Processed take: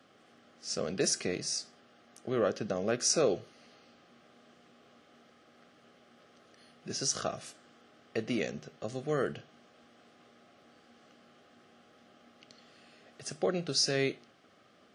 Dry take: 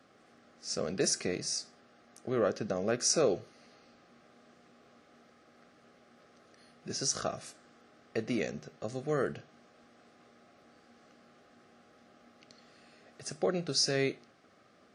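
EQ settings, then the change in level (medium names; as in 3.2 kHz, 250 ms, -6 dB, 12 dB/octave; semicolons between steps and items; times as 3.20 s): high-pass 63 Hz; peaking EQ 3.1 kHz +7 dB 0.33 oct; 0.0 dB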